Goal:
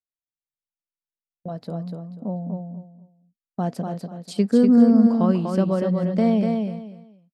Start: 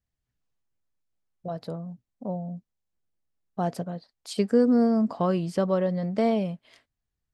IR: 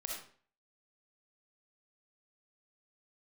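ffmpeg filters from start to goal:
-filter_complex "[0:a]agate=range=-30dB:threshold=-45dB:ratio=16:detection=peak,equalizer=frequency=220:width=1.5:gain=7.5,asplit=2[link_01][link_02];[link_02]aecho=0:1:244|488|732:0.596|0.137|0.0315[link_03];[link_01][link_03]amix=inputs=2:normalize=0,volume=-1dB"

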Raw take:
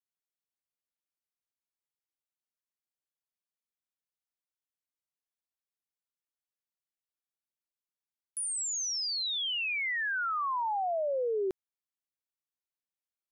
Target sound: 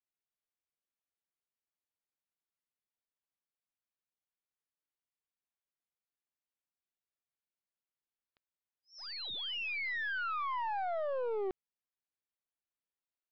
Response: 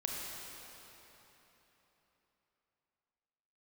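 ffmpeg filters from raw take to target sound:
-af "aresample=11025,aeval=exprs='clip(val(0),-1,0.0178)':channel_layout=same,aresample=44100,lowpass=3300,volume=-2.5dB"

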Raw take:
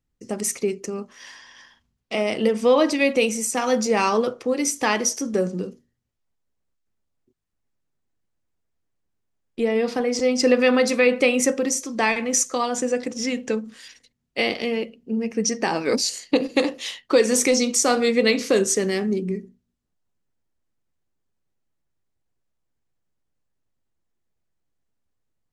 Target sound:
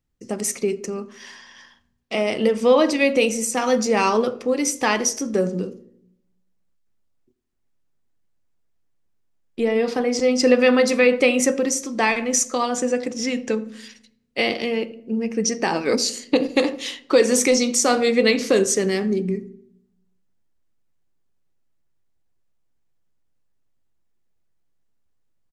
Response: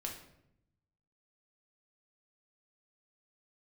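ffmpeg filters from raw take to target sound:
-filter_complex "[0:a]asplit=2[link_01][link_02];[link_02]adelay=83,lowpass=frequency=810:poles=1,volume=-14.5dB,asplit=2[link_03][link_04];[link_04]adelay=83,lowpass=frequency=810:poles=1,volume=0.53,asplit=2[link_05][link_06];[link_06]adelay=83,lowpass=frequency=810:poles=1,volume=0.53,asplit=2[link_07][link_08];[link_08]adelay=83,lowpass=frequency=810:poles=1,volume=0.53,asplit=2[link_09][link_10];[link_10]adelay=83,lowpass=frequency=810:poles=1,volume=0.53[link_11];[link_01][link_03][link_05][link_07][link_09][link_11]amix=inputs=6:normalize=0,asplit=2[link_12][link_13];[1:a]atrim=start_sample=2205,lowpass=9000[link_14];[link_13][link_14]afir=irnorm=-1:irlink=0,volume=-13dB[link_15];[link_12][link_15]amix=inputs=2:normalize=0"

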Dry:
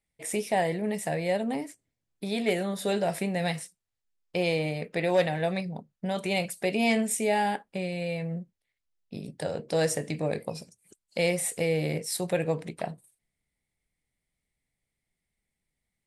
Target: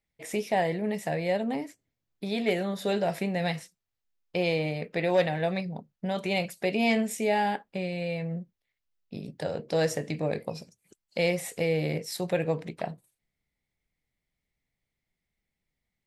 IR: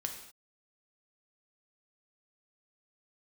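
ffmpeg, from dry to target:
-af "equalizer=frequency=9200:width=2.1:gain=-12"

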